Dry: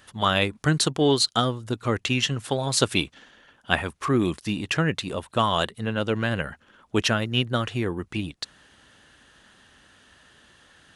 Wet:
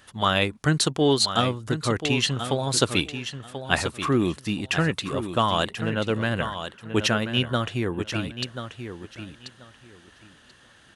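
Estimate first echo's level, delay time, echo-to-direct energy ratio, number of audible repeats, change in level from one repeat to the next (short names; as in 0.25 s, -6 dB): -9.5 dB, 1.035 s, -9.5 dB, 2, -15.0 dB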